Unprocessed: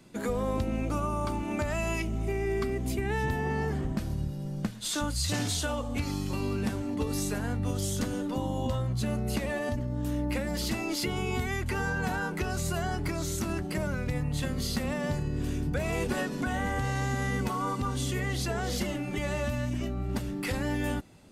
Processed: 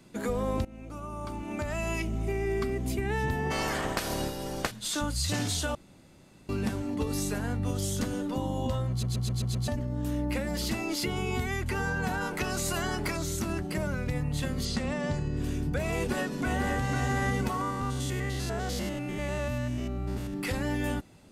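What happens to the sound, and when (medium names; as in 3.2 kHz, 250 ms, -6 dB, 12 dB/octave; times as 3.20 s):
0.65–2.05 s: fade in, from -19 dB
3.50–4.70 s: spectral peaks clipped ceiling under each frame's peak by 26 dB
5.75–6.49 s: room tone
8.90 s: stutter in place 0.13 s, 6 plays
12.20–13.16 s: spectral peaks clipped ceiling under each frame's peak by 12 dB
14.65–15.37 s: low-pass 8.5 kHz 24 dB/octave
15.94–16.91 s: echo throw 500 ms, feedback 45%, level -5.5 dB
17.61–20.34 s: spectrogram pixelated in time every 100 ms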